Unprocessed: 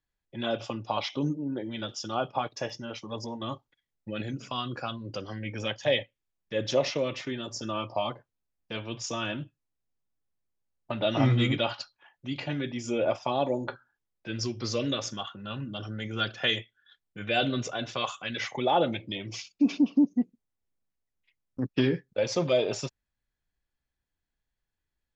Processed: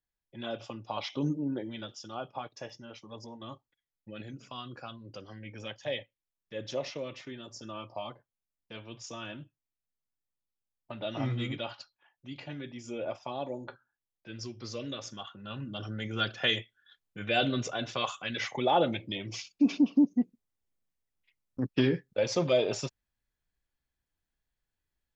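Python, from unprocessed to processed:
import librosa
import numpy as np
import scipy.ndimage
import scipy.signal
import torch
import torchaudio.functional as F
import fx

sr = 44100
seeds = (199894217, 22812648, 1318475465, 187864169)

y = fx.gain(x, sr, db=fx.line((0.87, -7.0), (1.43, 1.0), (1.99, -9.0), (14.91, -9.0), (15.87, -1.0)))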